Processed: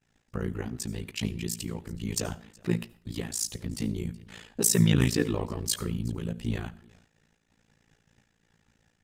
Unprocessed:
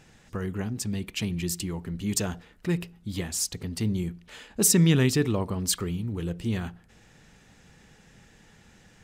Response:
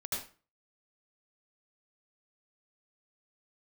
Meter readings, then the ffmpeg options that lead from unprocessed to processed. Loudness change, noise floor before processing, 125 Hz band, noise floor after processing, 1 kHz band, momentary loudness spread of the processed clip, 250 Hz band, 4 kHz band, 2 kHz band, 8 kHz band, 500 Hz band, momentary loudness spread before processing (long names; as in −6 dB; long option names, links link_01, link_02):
−2.5 dB, −57 dBFS, −2.5 dB, −72 dBFS, −2.5 dB, 15 LU, −2.5 dB, −2.5 dB, −2.5 dB, −3.0 dB, −2.5 dB, 14 LU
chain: -filter_complex "[0:a]aecho=1:1:371:0.0668,flanger=delay=7.1:depth=6.3:regen=-13:speed=0.63:shape=sinusoidal,tremolo=f=56:d=0.947,agate=range=-33dB:threshold=-53dB:ratio=3:detection=peak,asplit=2[link_01][link_02];[1:a]atrim=start_sample=2205,highshelf=frequency=11000:gain=11.5[link_03];[link_02][link_03]afir=irnorm=-1:irlink=0,volume=-23dB[link_04];[link_01][link_04]amix=inputs=2:normalize=0,volume=4.5dB"